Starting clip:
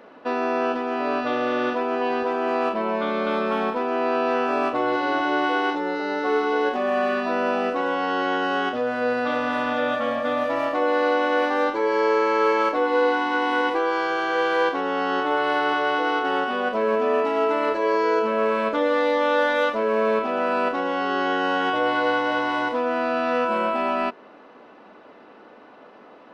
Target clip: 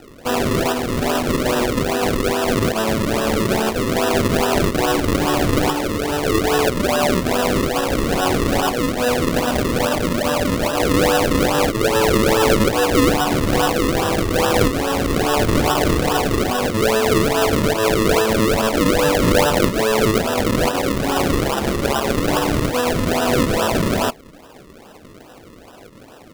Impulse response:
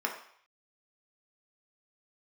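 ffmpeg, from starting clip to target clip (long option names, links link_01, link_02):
-filter_complex "[0:a]highshelf=frequency=2000:width_type=q:width=1.5:gain=7.5,acrusher=samples=39:mix=1:aa=0.000001:lfo=1:lforange=39:lforate=2.4,asettb=1/sr,asplit=3[link_01][link_02][link_03];[link_01]atrim=end=21.424[link_04];[link_02]atrim=start=21.42:end=22.18,asetpts=PTS-STARTPTS,afade=type=in:duration=0.004:curve=qsin,afade=type=out:start_time=0.756:duration=0.004:curve=qsin,aeval=exprs='val(0)*sin(2*PI*69*n/s)':channel_layout=same[link_05];[link_03]atrim=start=22.176[link_06];[link_04][link_05]acrossfade=duration=0.004:curve1=hsin:curve2=qsin[link_07];[link_07][link_06]acrossfade=duration=0.004:curve1=qsin:curve2=hsin,volume=5dB"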